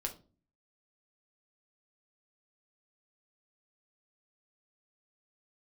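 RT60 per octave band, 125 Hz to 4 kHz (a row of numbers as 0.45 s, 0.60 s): 0.65 s, 0.60 s, 0.40 s, 0.30 s, 0.25 s, 0.25 s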